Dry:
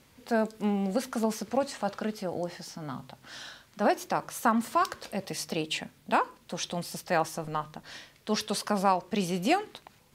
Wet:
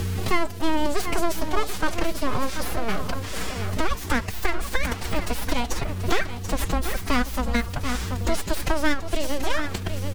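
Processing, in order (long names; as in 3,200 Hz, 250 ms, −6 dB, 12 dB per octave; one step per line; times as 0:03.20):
in parallel at +3 dB: downward compressor 10 to 1, threshold −35 dBFS, peak gain reduction 17 dB
on the sum: full-wave rectification
mains hum 60 Hz, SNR 17 dB
phase-vocoder pitch shift with formants kept +7.5 semitones
on a send: single-tap delay 733 ms −12 dB
on the sum: multiband upward and downward compressor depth 70%
level +9 dB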